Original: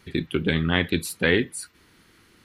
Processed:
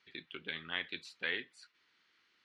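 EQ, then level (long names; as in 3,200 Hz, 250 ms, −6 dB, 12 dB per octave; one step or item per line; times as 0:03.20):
resonant band-pass 7,300 Hz, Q 0.75
high-frequency loss of the air 200 metres
high-shelf EQ 6,400 Hz −10 dB
0.0 dB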